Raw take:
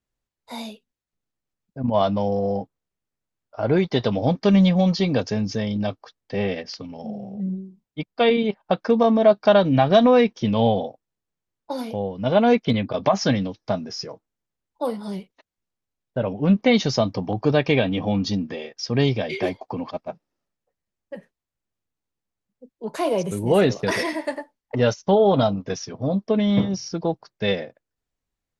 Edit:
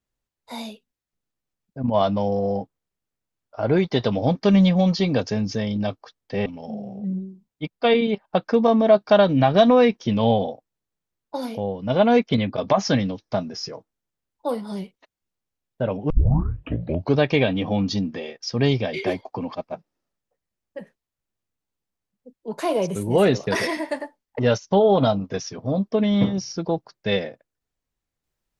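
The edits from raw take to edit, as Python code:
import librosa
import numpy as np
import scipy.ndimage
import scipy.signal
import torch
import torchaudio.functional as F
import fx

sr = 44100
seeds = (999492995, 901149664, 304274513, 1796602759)

y = fx.edit(x, sr, fx.cut(start_s=6.46, length_s=0.36),
    fx.tape_start(start_s=16.46, length_s=1.07), tone=tone)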